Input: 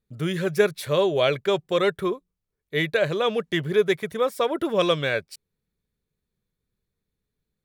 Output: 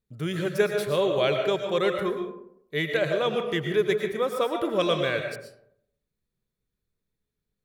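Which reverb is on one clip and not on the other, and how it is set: algorithmic reverb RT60 0.72 s, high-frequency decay 0.45×, pre-delay 75 ms, DRR 4.5 dB; trim -3.5 dB

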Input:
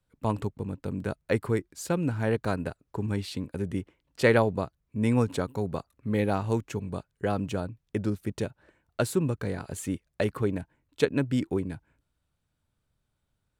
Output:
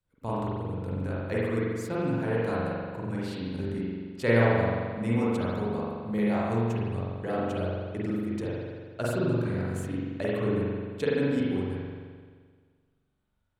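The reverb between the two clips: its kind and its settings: spring tank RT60 1.7 s, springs 43 ms, chirp 35 ms, DRR -7.5 dB; trim -8 dB

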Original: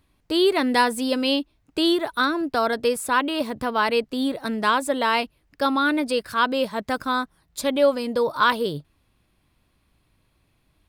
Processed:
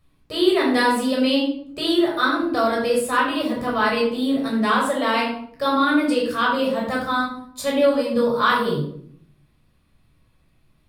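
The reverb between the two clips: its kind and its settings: simulated room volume 980 m³, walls furnished, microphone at 6.1 m; trim -6 dB

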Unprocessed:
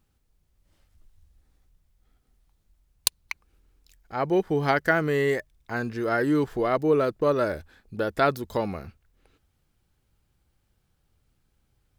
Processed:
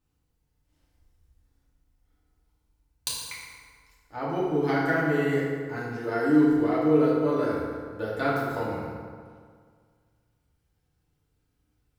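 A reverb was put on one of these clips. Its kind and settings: FDN reverb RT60 1.9 s, low-frequency decay 1×, high-frequency decay 0.6×, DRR -8 dB; trim -11.5 dB

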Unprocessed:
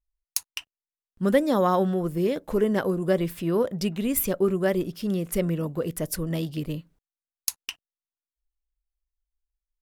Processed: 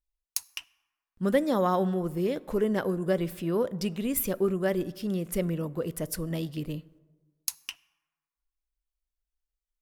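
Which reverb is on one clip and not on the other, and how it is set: plate-style reverb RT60 1.5 s, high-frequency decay 0.45×, DRR 19.5 dB; trim -3.5 dB

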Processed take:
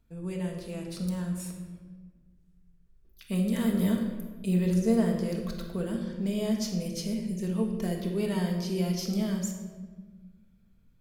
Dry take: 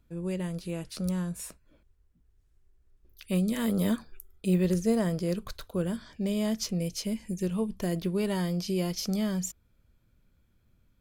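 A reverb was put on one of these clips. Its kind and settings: simulated room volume 1200 m³, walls mixed, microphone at 1.6 m; trim -4 dB

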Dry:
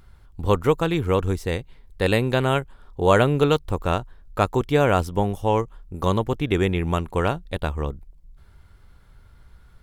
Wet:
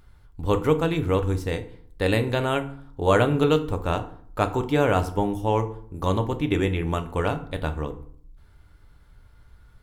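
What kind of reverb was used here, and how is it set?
FDN reverb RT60 0.56 s, low-frequency decay 1.35×, high-frequency decay 0.65×, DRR 7 dB; trim -3 dB

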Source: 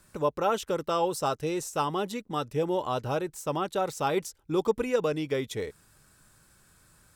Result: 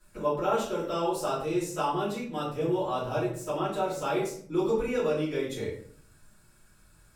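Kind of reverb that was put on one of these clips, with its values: simulated room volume 68 m³, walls mixed, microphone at 2.8 m; trim -13 dB

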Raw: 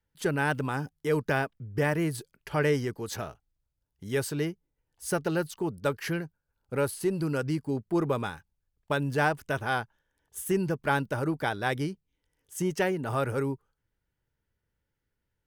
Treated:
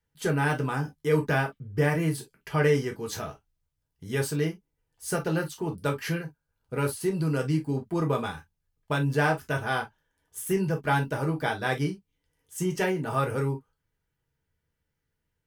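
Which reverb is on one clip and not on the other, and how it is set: gated-style reverb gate 80 ms falling, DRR 1 dB; trim -1 dB

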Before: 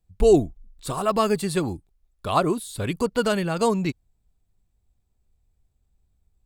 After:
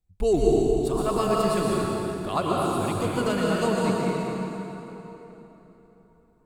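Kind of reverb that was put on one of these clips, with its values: plate-style reverb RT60 3.7 s, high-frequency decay 0.7×, pre-delay 105 ms, DRR -4.5 dB; trim -6.5 dB

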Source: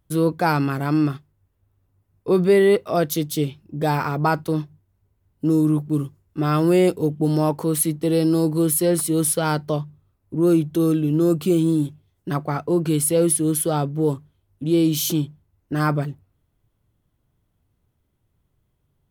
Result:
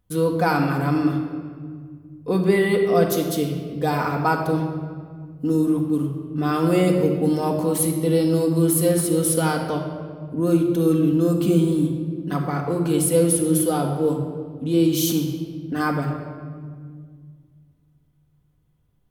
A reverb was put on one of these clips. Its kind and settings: simulated room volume 2900 m³, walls mixed, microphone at 1.9 m; trim -2.5 dB

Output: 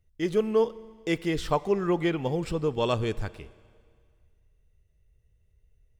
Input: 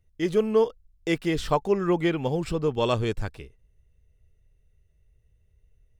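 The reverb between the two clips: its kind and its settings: Schroeder reverb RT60 2 s, combs from 32 ms, DRR 18.5 dB; trim -2 dB

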